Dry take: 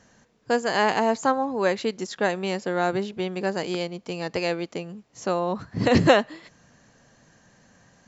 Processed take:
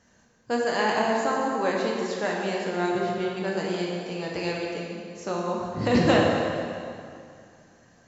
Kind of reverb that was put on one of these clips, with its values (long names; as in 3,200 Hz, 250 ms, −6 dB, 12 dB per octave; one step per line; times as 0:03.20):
dense smooth reverb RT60 2.4 s, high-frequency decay 0.8×, DRR −3 dB
level −6 dB